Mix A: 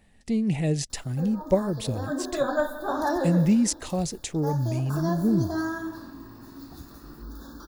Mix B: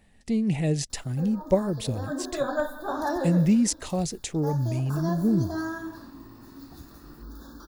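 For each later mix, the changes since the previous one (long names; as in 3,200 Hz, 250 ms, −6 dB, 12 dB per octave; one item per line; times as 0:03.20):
reverb: off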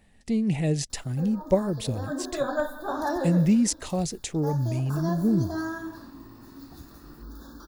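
nothing changed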